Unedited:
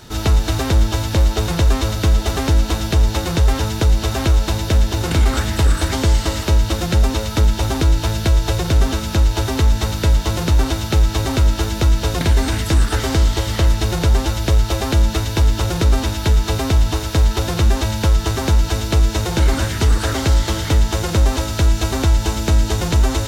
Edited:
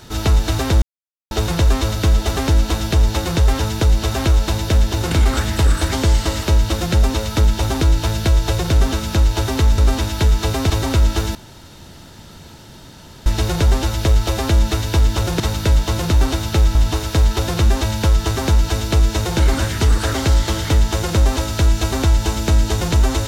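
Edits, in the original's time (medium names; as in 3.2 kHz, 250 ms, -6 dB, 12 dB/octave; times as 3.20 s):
0.82–1.31 s: mute
9.78–11.13 s: swap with 15.83–16.75 s
11.78–13.69 s: room tone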